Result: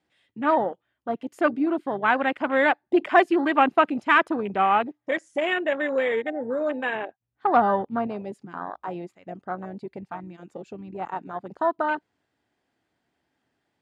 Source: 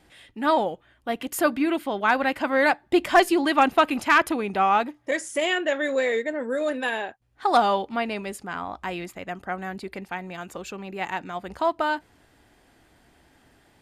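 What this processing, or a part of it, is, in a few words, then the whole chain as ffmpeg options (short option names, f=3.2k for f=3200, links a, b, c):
over-cleaned archive recording: -filter_complex "[0:a]highpass=110,lowpass=7k,afwtdn=0.0398,asettb=1/sr,asplit=3[a][b][c];[a]atrim=end=6.954[d];[b]atrim=start=6.95:end=8.07,asetpts=PTS-STARTPTS,afade=t=in:d=0.004:c=qsin,afade=t=out:st=1.116:d=0.004:c=qsin,bass=f=250:g=6,treble=f=4k:g=-8[e];[c]atrim=start=8.066[f];[d][e]acrossfade=d=0.004:c1=hsin:c2=qsin[g];[g][f]acrossfade=d=0.004:c1=qsin:c2=hsin"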